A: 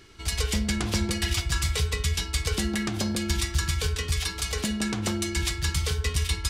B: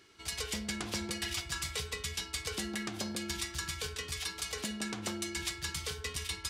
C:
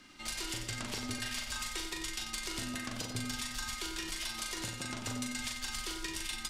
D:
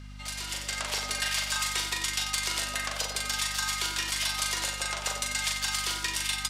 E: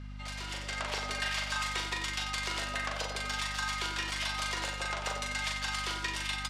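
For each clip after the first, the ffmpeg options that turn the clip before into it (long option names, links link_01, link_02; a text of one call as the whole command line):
ffmpeg -i in.wav -af "highpass=frequency=270:poles=1,volume=-7dB" out.wav
ffmpeg -i in.wav -filter_complex "[0:a]acompressor=threshold=-41dB:ratio=4,afreqshift=-97,asplit=2[link_01][link_02];[link_02]aecho=0:1:40|92|159.6|247.5|361.7:0.631|0.398|0.251|0.158|0.1[link_03];[link_01][link_03]amix=inputs=2:normalize=0,volume=3.5dB" out.wav
ffmpeg -i in.wav -af "dynaudnorm=framelen=430:gausssize=3:maxgain=8dB,highpass=frequency=510:width=0.5412,highpass=frequency=510:width=1.3066,aeval=exprs='val(0)+0.00631*(sin(2*PI*50*n/s)+sin(2*PI*2*50*n/s)/2+sin(2*PI*3*50*n/s)/3+sin(2*PI*4*50*n/s)/4+sin(2*PI*5*50*n/s)/5)':channel_layout=same,volume=1.5dB" out.wav
ffmpeg -i in.wav -af "aemphasis=mode=reproduction:type=75fm" out.wav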